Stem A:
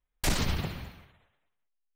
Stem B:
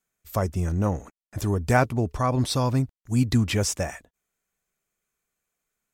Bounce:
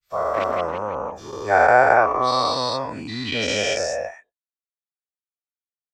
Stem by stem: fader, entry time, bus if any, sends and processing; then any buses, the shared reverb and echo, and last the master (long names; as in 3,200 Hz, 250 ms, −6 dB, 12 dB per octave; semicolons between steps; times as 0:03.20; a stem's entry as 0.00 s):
−1.0 dB, 0.10 s, no send, Butterworth high-pass 230 Hz; auto-filter low-pass saw up 5.9 Hz 540–2,900 Hz
+2.0 dB, 0.00 s, no send, every bin's largest magnitude spread in time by 480 ms; three-way crossover with the lows and the highs turned down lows −16 dB, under 410 Hz, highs −15 dB, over 6,300 Hz; every bin expanded away from the loudest bin 1.5 to 1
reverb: not used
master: no processing